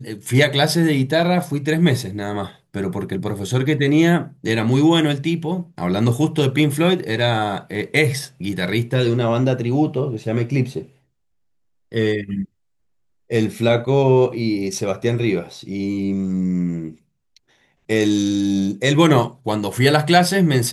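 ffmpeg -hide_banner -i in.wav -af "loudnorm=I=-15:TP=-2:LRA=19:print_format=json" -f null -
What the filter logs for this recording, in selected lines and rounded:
"input_i" : "-18.8",
"input_tp" : "-1.0",
"input_lra" : "6.1",
"input_thresh" : "-29.0",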